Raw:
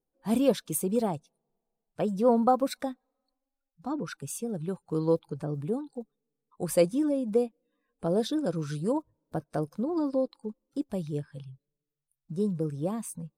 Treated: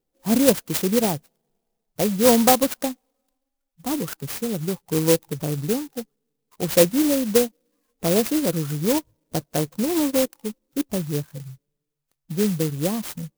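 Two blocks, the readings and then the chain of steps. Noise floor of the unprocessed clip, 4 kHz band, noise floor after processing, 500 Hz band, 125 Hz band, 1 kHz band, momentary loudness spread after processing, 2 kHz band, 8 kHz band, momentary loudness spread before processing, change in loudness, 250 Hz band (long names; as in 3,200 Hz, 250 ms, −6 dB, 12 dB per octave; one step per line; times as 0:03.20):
below −85 dBFS, +14.5 dB, −80 dBFS, +6.0 dB, +7.0 dB, +5.0 dB, 13 LU, +13.5 dB, +13.0 dB, 13 LU, +7.5 dB, +7.0 dB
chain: converter with an unsteady clock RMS 0.14 ms
level +7 dB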